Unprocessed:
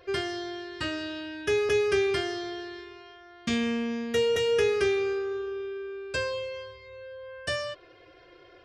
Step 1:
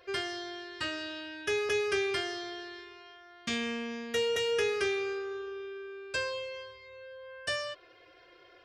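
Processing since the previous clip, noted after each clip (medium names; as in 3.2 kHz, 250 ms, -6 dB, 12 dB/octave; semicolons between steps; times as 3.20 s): bass shelf 430 Hz -10 dB; trim -1 dB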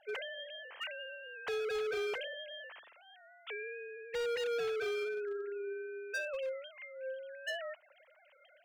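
formants replaced by sine waves; overload inside the chain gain 33.5 dB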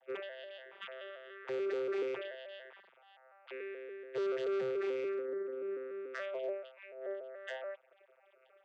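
vocoder on a broken chord bare fifth, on C3, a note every 144 ms; trim +1 dB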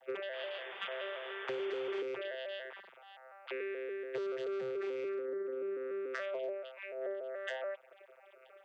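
compression 6:1, threshold -43 dBFS, peak gain reduction 11 dB; painted sound noise, 0.33–2.02 s, 360–3600 Hz -57 dBFS; trim +7 dB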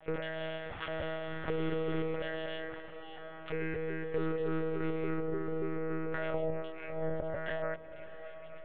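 monotone LPC vocoder at 8 kHz 160 Hz; dynamic bell 3.1 kHz, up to -8 dB, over -57 dBFS, Q 0.81; echo that smears into a reverb 691 ms, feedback 55%, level -14 dB; trim +5 dB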